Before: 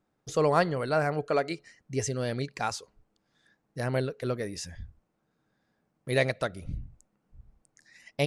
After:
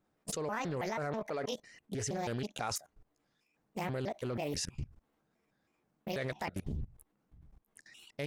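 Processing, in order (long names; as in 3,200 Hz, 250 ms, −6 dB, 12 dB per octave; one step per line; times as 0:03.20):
pitch shifter gated in a rhythm +6.5 semitones, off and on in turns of 162 ms
output level in coarse steps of 21 dB
highs frequency-modulated by the lows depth 0.38 ms
level +6 dB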